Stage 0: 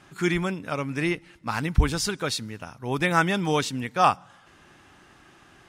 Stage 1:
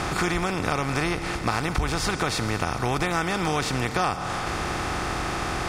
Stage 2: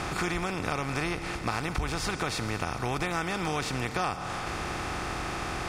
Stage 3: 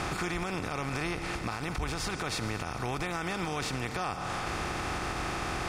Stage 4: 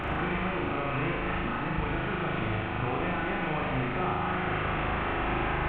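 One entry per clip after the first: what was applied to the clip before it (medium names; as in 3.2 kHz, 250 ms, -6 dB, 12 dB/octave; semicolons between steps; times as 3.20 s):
spectral levelling over time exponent 0.4; compression, threshold -21 dBFS, peak gain reduction 10 dB
peaking EQ 2.5 kHz +2.5 dB 0.31 oct; trim -5.5 dB
peak limiter -23 dBFS, peak gain reduction 8 dB
one-bit delta coder 16 kbps, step -36.5 dBFS; on a send: flutter echo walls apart 6.6 m, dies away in 1.2 s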